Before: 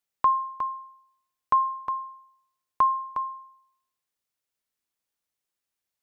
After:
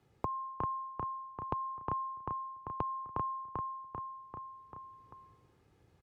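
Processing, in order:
comb filter 2.4 ms, depth 48%
in parallel at −0.5 dB: brickwall limiter −24.5 dBFS, peak gain reduction 11.5 dB
on the sum: downward compressor, threshold −25 dBFS, peak gain reduction 6 dB
resonant band-pass 120 Hz, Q 1.3
on a send: repeating echo 392 ms, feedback 39%, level −3.5 dB
on the sum: multiband upward and downward compressor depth 70%
level +13 dB

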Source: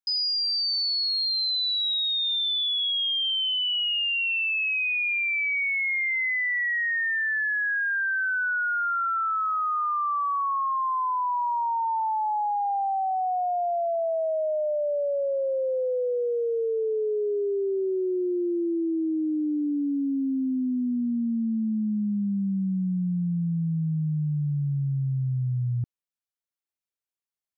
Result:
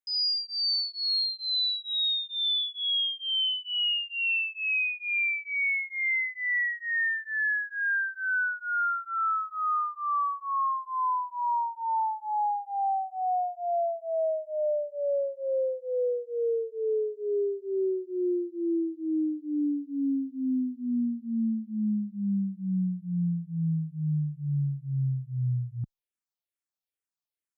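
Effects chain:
frequency shifter mixed with the dry sound −2.3 Hz

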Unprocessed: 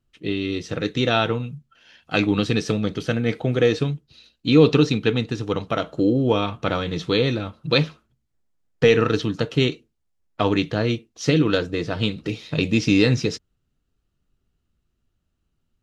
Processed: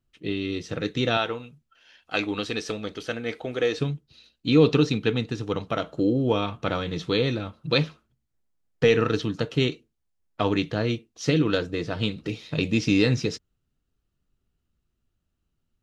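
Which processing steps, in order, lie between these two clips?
0:01.17–0:03.78: parametric band 140 Hz −14 dB 1.6 octaves
level −3.5 dB

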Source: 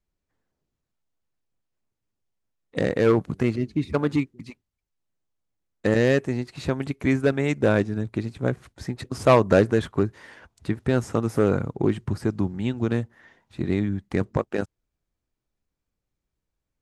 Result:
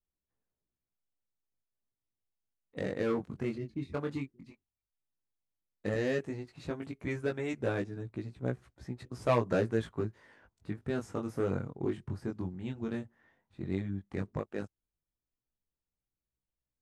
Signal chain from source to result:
chorus effect 0.12 Hz, delay 16 ms, depth 6.3 ms
one half of a high-frequency compander decoder only
level −8.5 dB

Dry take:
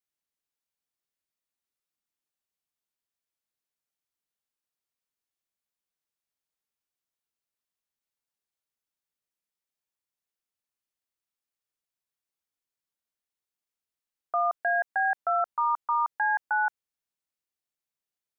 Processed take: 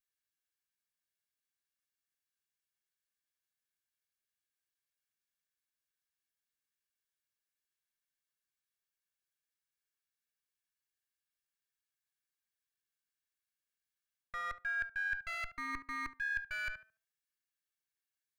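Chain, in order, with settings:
lower of the sound and its delayed copy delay 1.8 ms
drawn EQ curve 340 Hz 0 dB, 740 Hz −17 dB, 1,600 Hz +3 dB
tape delay 72 ms, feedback 32%, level −11 dB, low-pass 1,400 Hz
reversed playback
downward compressor 16 to 1, threshold −35 dBFS, peak gain reduction 14 dB
reversed playback
parametric band 1,500 Hz +6.5 dB 0.63 octaves
level −4 dB

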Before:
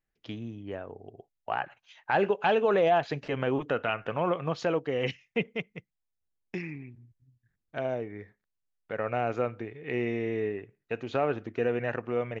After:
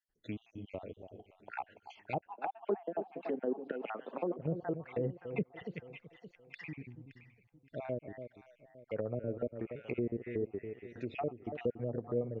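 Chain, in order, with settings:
time-frequency cells dropped at random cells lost 54%
dynamic equaliser 1,300 Hz, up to −6 dB, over −46 dBFS, Q 0.89
delay that swaps between a low-pass and a high-pass 285 ms, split 820 Hz, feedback 57%, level −9.5 dB
treble cut that deepens with the level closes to 2,800 Hz, closed at −27.5 dBFS
0:02.27–0:04.39: Butterworth high-pass 200 Hz 48 dB per octave
treble cut that deepens with the level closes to 540 Hz, closed at −30 dBFS
level −1.5 dB

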